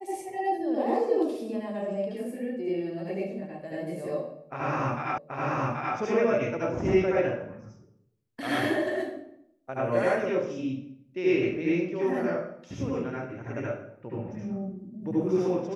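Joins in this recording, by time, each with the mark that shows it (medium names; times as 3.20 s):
5.18 s: repeat of the last 0.78 s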